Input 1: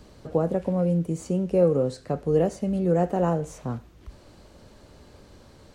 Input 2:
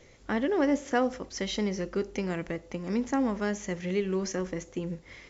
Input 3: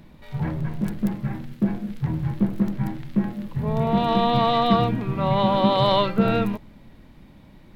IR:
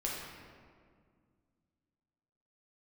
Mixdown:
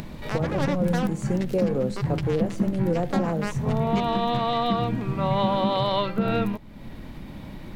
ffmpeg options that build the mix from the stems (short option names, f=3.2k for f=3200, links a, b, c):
-filter_complex "[0:a]alimiter=limit=-15dB:level=0:latency=1:release=166,volume=-0.5dB[a];[1:a]highpass=300,acrusher=bits=3:mix=0:aa=0.5,volume=-0.5dB[b];[2:a]acompressor=mode=upward:threshold=-24dB:ratio=2.5,volume=-1.5dB[c];[a][b][c]amix=inputs=3:normalize=0,alimiter=limit=-13dB:level=0:latency=1:release=181"